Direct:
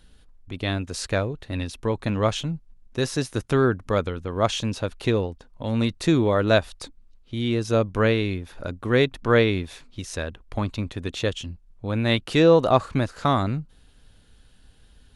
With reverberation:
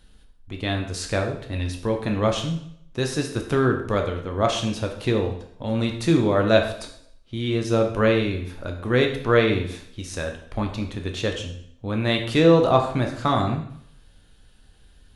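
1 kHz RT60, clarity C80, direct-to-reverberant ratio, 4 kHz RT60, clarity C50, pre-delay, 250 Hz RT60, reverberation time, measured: 0.65 s, 10.5 dB, 3.0 dB, 0.65 s, 7.5 dB, 5 ms, 0.65 s, 0.65 s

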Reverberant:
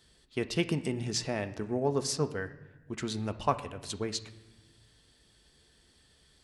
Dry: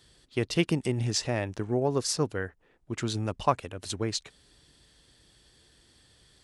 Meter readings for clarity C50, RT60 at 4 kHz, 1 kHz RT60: 14.0 dB, 0.85 s, 1.0 s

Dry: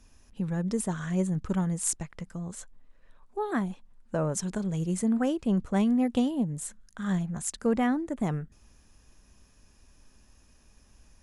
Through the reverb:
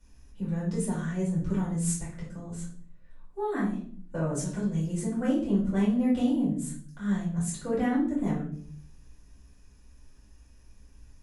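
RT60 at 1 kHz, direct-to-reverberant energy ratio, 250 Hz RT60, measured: 0.40 s, -8.5 dB, 0.80 s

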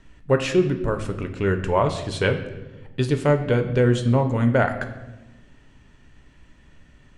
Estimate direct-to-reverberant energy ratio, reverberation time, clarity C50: 6.0 dB, 1.1 s, 10.5 dB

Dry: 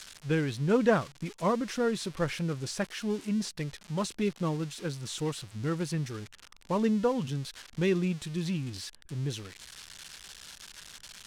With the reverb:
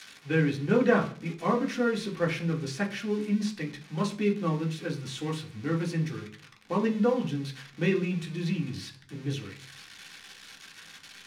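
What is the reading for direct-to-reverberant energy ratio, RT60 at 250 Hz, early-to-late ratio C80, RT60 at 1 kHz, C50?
-0.5 dB, 0.70 s, 18.0 dB, 0.40 s, 13.0 dB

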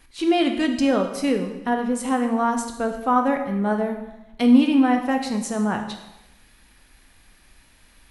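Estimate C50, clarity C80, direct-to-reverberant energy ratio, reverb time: 7.5 dB, 10.0 dB, 4.0 dB, 0.95 s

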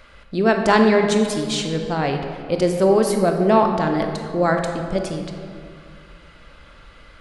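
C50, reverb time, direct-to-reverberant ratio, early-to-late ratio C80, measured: 4.5 dB, 2.2 s, 3.5 dB, 6.0 dB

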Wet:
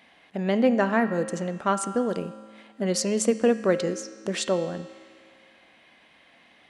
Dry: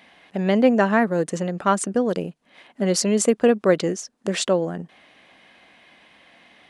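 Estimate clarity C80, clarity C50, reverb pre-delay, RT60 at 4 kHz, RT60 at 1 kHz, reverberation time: 13.0 dB, 12.0 dB, 4 ms, 1.9 s, 1.9 s, 2.0 s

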